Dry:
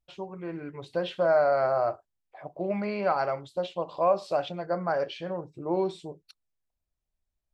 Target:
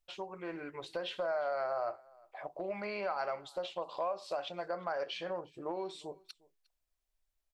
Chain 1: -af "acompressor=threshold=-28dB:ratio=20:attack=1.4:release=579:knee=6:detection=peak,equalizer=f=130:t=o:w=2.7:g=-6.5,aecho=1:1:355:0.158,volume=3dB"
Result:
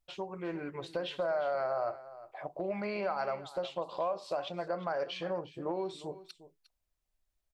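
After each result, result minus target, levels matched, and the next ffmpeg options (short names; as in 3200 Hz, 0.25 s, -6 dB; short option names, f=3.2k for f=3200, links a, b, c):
echo-to-direct +9 dB; 125 Hz band +5.5 dB
-af "acompressor=threshold=-28dB:ratio=20:attack=1.4:release=579:knee=6:detection=peak,equalizer=f=130:t=o:w=2.7:g=-6.5,aecho=1:1:355:0.0562,volume=3dB"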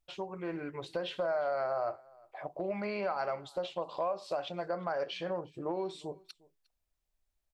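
125 Hz band +5.5 dB
-af "acompressor=threshold=-28dB:ratio=20:attack=1.4:release=579:knee=6:detection=peak,equalizer=f=130:t=o:w=2.7:g=-15.5,aecho=1:1:355:0.0562,volume=3dB"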